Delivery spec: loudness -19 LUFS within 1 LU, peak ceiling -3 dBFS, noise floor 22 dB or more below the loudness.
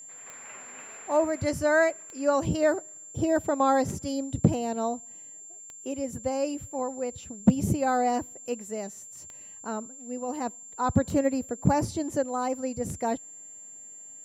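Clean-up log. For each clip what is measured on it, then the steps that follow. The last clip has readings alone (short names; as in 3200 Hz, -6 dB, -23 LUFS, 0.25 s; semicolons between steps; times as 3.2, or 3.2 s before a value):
clicks 8; steady tone 7300 Hz; tone level -43 dBFS; loudness -28.0 LUFS; peak -9.0 dBFS; loudness target -19.0 LUFS
-> de-click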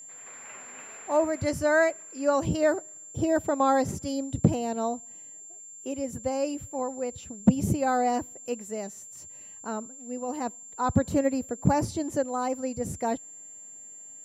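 clicks 0; steady tone 7300 Hz; tone level -43 dBFS
-> notch 7300 Hz, Q 30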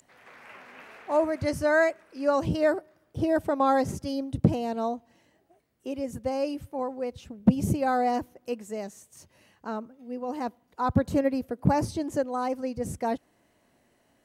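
steady tone none; loudness -28.0 LUFS; peak -9.5 dBFS; loudness target -19.0 LUFS
-> gain +9 dB; limiter -3 dBFS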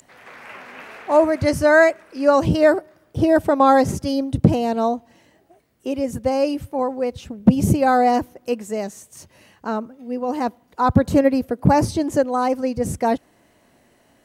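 loudness -19.5 LUFS; peak -3.0 dBFS; noise floor -59 dBFS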